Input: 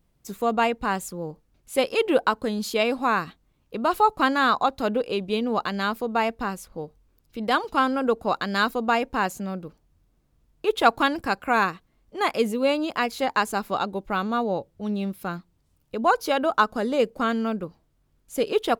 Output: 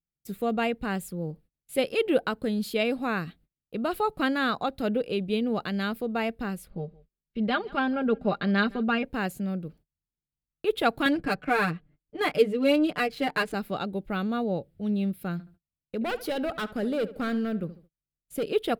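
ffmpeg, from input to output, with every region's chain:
-filter_complex "[0:a]asettb=1/sr,asplit=3[a][b][c];[a]atrim=end=6.704[d];[b]atrim=start=6.7:end=9.05,asetpts=PTS-STARTPTS,afade=t=in:d=0.004:c=qsin,afade=t=out:st=2.346:d=0.004:c=qsin,lowpass=3.7k,aecho=1:1:5:0.68,atrim=end_sample=103635,aecho=1:1:162:0.0668,atrim=end_sample=103635[e];[c]atrim=start=9.046[f];[d][e]acrossfade=d=0.004:c1=hsin:c2=qsin[g];[g][f]acrossfade=d=0.004:c1=qsin:c2=hsin,asettb=1/sr,asplit=3[h][i][j];[h]atrim=end=11.054[k];[i]atrim=start=11.05:end=13.54,asetpts=PTS-STARTPTS,afade=t=in:d=0.004:c=qsin,afade=t=out:st=2.486:d=0.004:c=qsin,bandreject=f=3.7k:w=18,aecho=1:1:6.7:0.99,atrim=end_sample=109809,adynamicsmooth=sensitivity=7.5:basefreq=2.6k[l];[j]atrim=start=13.536[m];[k][l]acrossfade=d=0.004:c1=hsin:c2=qsin[n];[n][m]acrossfade=d=0.004:c1=qsin:c2=hsin,asettb=1/sr,asplit=3[o][p][q];[o]atrim=end=15.324[r];[p]atrim=start=15.32:end=18.46,asetpts=PTS-STARTPTS,afade=t=in:d=0.004:c=qsin,afade=t=out:st=3.136:d=0.004:c=qsin,volume=21dB,asoftclip=hard,volume=-21dB,asplit=2[s][t];[t]adelay=73,lowpass=f=2.7k:p=1,volume=-15dB,asplit=2[u][v];[v]adelay=73,lowpass=f=2.7k:p=1,volume=0.36,asplit=2[w][x];[x]adelay=73,lowpass=f=2.7k:p=1,volume=0.36[y];[s][u][w][y]amix=inputs=4:normalize=0,atrim=end_sample=138474[z];[q]atrim=start=18.456[aa];[r][z]acrossfade=d=0.004:c1=hsin:c2=qsin[ab];[ab][aa]acrossfade=d=0.004:c1=qsin:c2=hsin,agate=range=-28dB:threshold=-52dB:ratio=16:detection=peak,equalizer=f=160:t=o:w=0.67:g=6,equalizer=f=1k:t=o:w=0.67:g=-12,equalizer=f=6.3k:t=o:w=0.67:g=-11,volume=-2dB"

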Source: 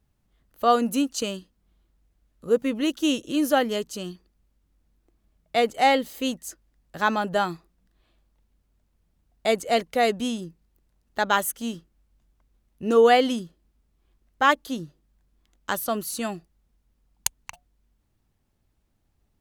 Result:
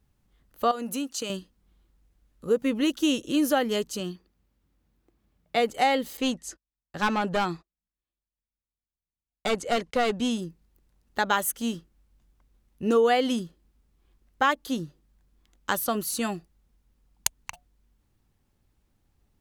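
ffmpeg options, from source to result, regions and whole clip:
-filter_complex "[0:a]asettb=1/sr,asplit=3[a][b][c];[a]atrim=end=0.714[d];[b]atrim=start=0.71:end=1.3,asetpts=PTS-STARTPTS,afade=t=in:d=0.004:c=qsin,afade=t=out:st=0.586:d=0.004:c=qsin,highpass=f=270:p=1,acompressor=threshold=-31dB:ratio=2.5:attack=3.2:release=140:knee=1:detection=peak[e];[c]atrim=start=1.296[f];[d][e]acrossfade=d=0.004:c1=hsin:c2=qsin[g];[g][f]acrossfade=d=0.004:c1=qsin:c2=hsin,asettb=1/sr,asplit=3[h][i][j];[h]atrim=end=4.004[k];[i]atrim=start=4:end=5.6,asetpts=PTS-STARTPTS,afade=t=in:d=0.004:c=qsin,afade=t=out:st=1.596:d=0.004:c=qsin,highpass=64,equalizer=f=8.6k:w=0.67:g=-4.5[l];[j]atrim=start=5.596[m];[k][l]acrossfade=d=0.004:c1=hsin:c2=qsin[n];[n][m]acrossfade=d=0.004:c1=qsin:c2=hsin,asettb=1/sr,asplit=3[o][p][q];[o]atrim=end=6.174[r];[p]atrim=start=6.17:end=10.31,asetpts=PTS-STARTPTS,afade=t=in:d=0.004:c=qsin,afade=t=out:st=4.136:d=0.004:c=qsin,lowpass=8k,agate=range=-30dB:threshold=-54dB:ratio=16:release=100:detection=peak,aeval=exprs='clip(val(0),-1,0.075)':c=same[s];[q]atrim=start=10.306[t];[r][s]acrossfade=d=0.004:c1=hsin:c2=qsin[u];[u][t]acrossfade=d=0.004:c1=qsin:c2=hsin,acompressor=threshold=-21dB:ratio=3,bandreject=f=650:w=12,volume=1.5dB"

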